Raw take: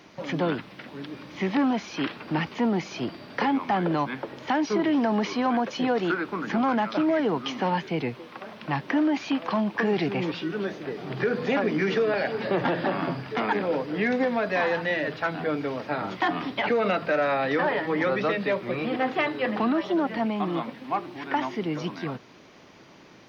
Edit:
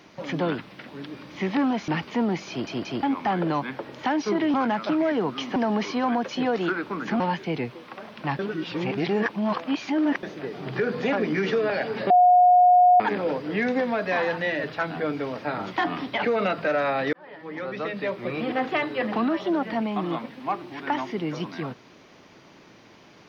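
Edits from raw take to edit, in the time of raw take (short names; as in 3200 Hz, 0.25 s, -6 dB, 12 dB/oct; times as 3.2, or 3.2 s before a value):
1.88–2.32 cut
2.93 stutter in place 0.18 s, 3 plays
6.62–7.64 move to 4.98
8.83–10.67 reverse
12.54–13.44 bleep 721 Hz -12 dBFS
17.57–18.85 fade in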